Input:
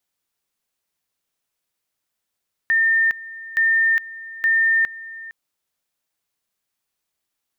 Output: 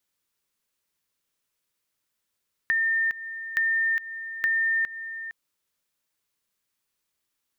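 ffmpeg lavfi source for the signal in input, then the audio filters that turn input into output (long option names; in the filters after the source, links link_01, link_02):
-f lavfi -i "aevalsrc='pow(10,(-14-18.5*gte(mod(t,0.87),0.41))/20)*sin(2*PI*1810*t)':duration=2.61:sample_rate=44100"
-af "equalizer=frequency=730:width_type=o:width=0.25:gain=-9,acompressor=threshold=-23dB:ratio=6"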